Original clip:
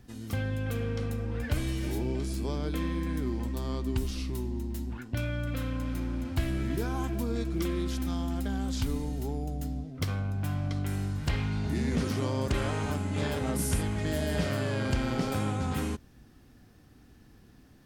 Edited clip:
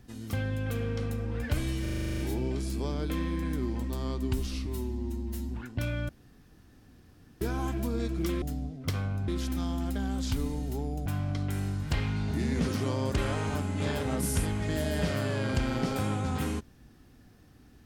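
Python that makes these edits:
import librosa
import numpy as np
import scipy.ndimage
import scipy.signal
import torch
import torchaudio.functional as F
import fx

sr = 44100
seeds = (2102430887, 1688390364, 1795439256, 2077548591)

y = fx.edit(x, sr, fx.stutter(start_s=1.82, slice_s=0.04, count=10),
    fx.stretch_span(start_s=4.29, length_s=0.56, factor=1.5),
    fx.room_tone_fill(start_s=5.45, length_s=1.32),
    fx.move(start_s=9.56, length_s=0.86, to_s=7.78), tone=tone)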